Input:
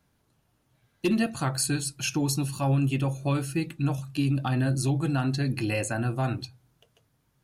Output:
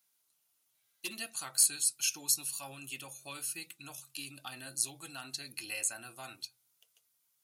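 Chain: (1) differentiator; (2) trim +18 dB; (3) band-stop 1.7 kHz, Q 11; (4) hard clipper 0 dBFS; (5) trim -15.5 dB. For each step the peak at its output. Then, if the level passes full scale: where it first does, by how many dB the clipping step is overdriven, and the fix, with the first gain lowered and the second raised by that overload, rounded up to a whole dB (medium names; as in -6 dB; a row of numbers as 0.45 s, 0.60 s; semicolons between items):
-14.0 dBFS, +4.0 dBFS, +4.0 dBFS, 0.0 dBFS, -15.5 dBFS; step 2, 4.0 dB; step 2 +14 dB, step 5 -11.5 dB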